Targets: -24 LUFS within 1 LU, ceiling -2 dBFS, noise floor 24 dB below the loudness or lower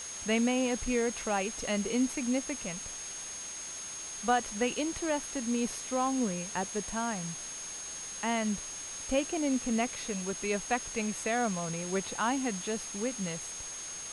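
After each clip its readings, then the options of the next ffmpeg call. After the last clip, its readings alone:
steady tone 6500 Hz; tone level -40 dBFS; noise floor -41 dBFS; noise floor target -57 dBFS; loudness -32.5 LUFS; peak -15.5 dBFS; loudness target -24.0 LUFS
-> -af "bandreject=f=6.5k:w=30"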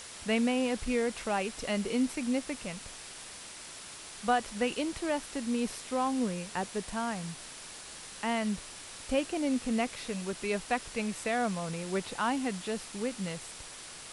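steady tone none; noise floor -46 dBFS; noise floor target -58 dBFS
-> -af "afftdn=nr=12:nf=-46"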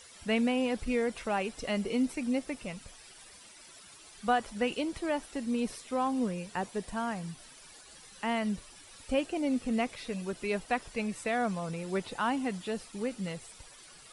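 noise floor -54 dBFS; noise floor target -57 dBFS
-> -af "afftdn=nr=6:nf=-54"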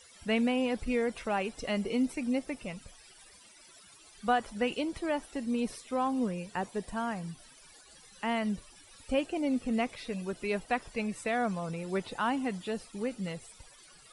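noise floor -57 dBFS; loudness -33.0 LUFS; peak -16.0 dBFS; loudness target -24.0 LUFS
-> -af "volume=9dB"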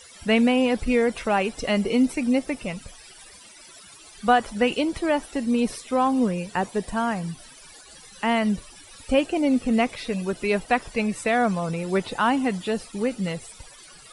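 loudness -24.0 LUFS; peak -7.0 dBFS; noise floor -48 dBFS

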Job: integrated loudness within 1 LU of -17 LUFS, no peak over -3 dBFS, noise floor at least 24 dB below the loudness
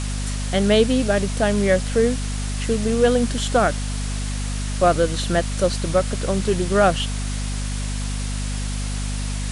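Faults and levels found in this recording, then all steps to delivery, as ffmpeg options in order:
hum 50 Hz; harmonics up to 250 Hz; hum level -23 dBFS; noise floor -25 dBFS; noise floor target -46 dBFS; loudness -21.5 LUFS; peak -4.5 dBFS; loudness target -17.0 LUFS
-> -af "bandreject=f=50:t=h:w=6,bandreject=f=100:t=h:w=6,bandreject=f=150:t=h:w=6,bandreject=f=200:t=h:w=6,bandreject=f=250:t=h:w=6"
-af "afftdn=nr=21:nf=-25"
-af "volume=4.5dB,alimiter=limit=-3dB:level=0:latency=1"

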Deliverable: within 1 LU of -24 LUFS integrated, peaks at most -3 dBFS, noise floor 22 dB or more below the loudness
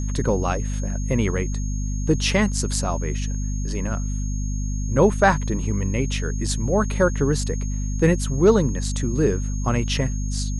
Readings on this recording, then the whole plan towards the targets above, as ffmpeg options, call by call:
hum 50 Hz; harmonics up to 250 Hz; hum level -22 dBFS; steady tone 6500 Hz; tone level -38 dBFS; loudness -23.0 LUFS; peak -4.0 dBFS; loudness target -24.0 LUFS
-> -af "bandreject=f=50:t=h:w=4,bandreject=f=100:t=h:w=4,bandreject=f=150:t=h:w=4,bandreject=f=200:t=h:w=4,bandreject=f=250:t=h:w=4"
-af "bandreject=f=6.5k:w=30"
-af "volume=-1dB"

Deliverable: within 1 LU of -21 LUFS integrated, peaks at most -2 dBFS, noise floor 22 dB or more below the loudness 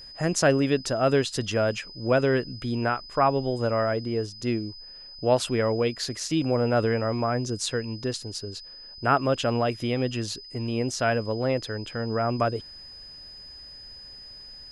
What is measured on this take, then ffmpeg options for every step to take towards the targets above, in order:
steady tone 5000 Hz; tone level -42 dBFS; loudness -26.0 LUFS; peak -8.5 dBFS; loudness target -21.0 LUFS
-> -af "bandreject=f=5k:w=30"
-af "volume=5dB"

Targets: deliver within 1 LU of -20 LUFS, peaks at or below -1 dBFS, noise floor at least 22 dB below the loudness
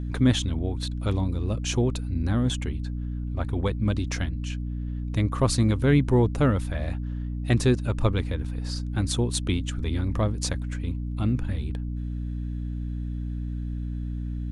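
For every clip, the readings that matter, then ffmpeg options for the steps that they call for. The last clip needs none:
hum 60 Hz; harmonics up to 300 Hz; hum level -28 dBFS; loudness -27.0 LUFS; peak -9.5 dBFS; loudness target -20.0 LUFS
-> -af "bandreject=f=60:t=h:w=4,bandreject=f=120:t=h:w=4,bandreject=f=180:t=h:w=4,bandreject=f=240:t=h:w=4,bandreject=f=300:t=h:w=4"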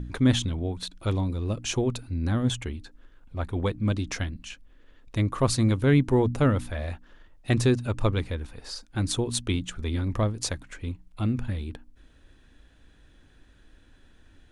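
hum none; loudness -27.5 LUFS; peak -9.0 dBFS; loudness target -20.0 LUFS
-> -af "volume=7.5dB"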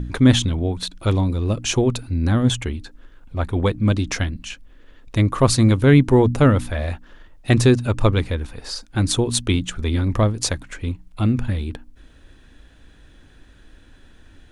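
loudness -20.0 LUFS; peak -1.5 dBFS; noise floor -49 dBFS

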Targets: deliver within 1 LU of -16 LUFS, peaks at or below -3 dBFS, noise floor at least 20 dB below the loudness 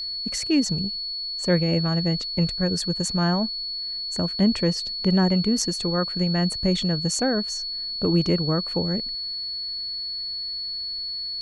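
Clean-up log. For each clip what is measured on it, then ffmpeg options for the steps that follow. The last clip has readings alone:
steady tone 4400 Hz; tone level -28 dBFS; loudness -24.0 LUFS; peak -9.0 dBFS; loudness target -16.0 LUFS
-> -af "bandreject=f=4.4k:w=30"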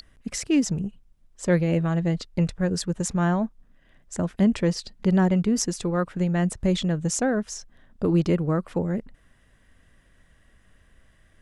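steady tone none; loudness -25.0 LUFS; peak -8.5 dBFS; loudness target -16.0 LUFS
-> -af "volume=9dB,alimiter=limit=-3dB:level=0:latency=1"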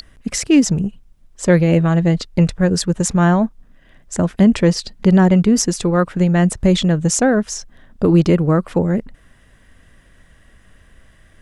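loudness -16.0 LUFS; peak -3.0 dBFS; noise floor -51 dBFS

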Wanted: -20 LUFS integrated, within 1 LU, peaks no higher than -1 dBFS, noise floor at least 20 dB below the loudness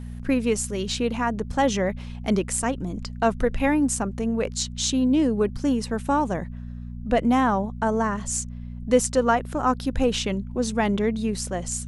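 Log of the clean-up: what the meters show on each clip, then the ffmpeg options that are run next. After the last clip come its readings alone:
hum 60 Hz; harmonics up to 240 Hz; hum level -32 dBFS; loudness -24.0 LUFS; peak -6.5 dBFS; loudness target -20.0 LUFS
-> -af "bandreject=f=60:t=h:w=4,bandreject=f=120:t=h:w=4,bandreject=f=180:t=h:w=4,bandreject=f=240:t=h:w=4"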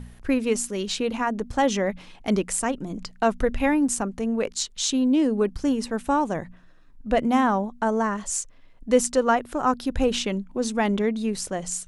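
hum none; loudness -24.5 LUFS; peak -7.0 dBFS; loudness target -20.0 LUFS
-> -af "volume=4.5dB"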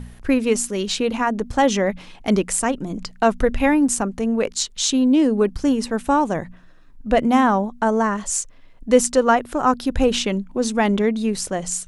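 loudness -20.0 LUFS; peak -2.5 dBFS; noise floor -46 dBFS

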